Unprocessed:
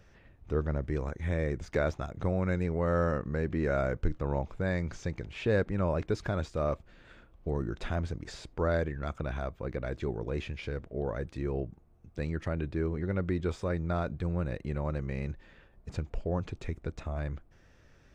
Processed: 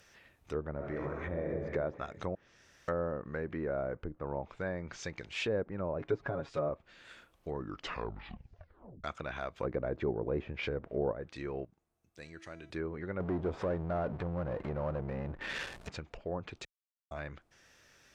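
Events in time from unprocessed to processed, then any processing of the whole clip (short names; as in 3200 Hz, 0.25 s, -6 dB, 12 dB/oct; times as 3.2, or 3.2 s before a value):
0.72–1.56 reverb throw, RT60 1.5 s, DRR -1 dB
2.35–2.88 room tone
3.95–4.43 high shelf 2700 Hz -11 dB
5.99–6.69 comb 7.2 ms, depth 93%
7.54 tape stop 1.50 s
9.56–11.12 gain +7 dB
11.65–12.7 resonator 330 Hz, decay 0.93 s, mix 70%
13.2–15.89 power-law curve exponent 0.5
16.65–17.11 mute
whole clip: treble ducked by the level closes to 710 Hz, closed at -24.5 dBFS; tilt +3.5 dB/oct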